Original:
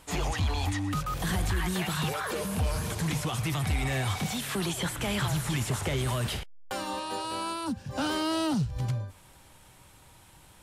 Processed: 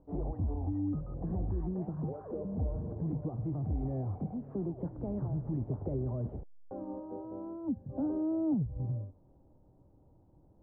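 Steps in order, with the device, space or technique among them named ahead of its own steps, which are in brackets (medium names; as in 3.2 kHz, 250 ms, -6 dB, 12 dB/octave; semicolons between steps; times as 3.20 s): under water (low-pass 650 Hz 24 dB/octave; peaking EQ 290 Hz +5.5 dB 0.51 oct); trim -5 dB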